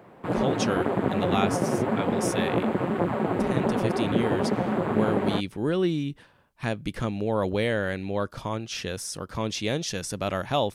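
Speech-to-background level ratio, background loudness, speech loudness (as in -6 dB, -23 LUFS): -3.5 dB, -26.5 LUFS, -30.0 LUFS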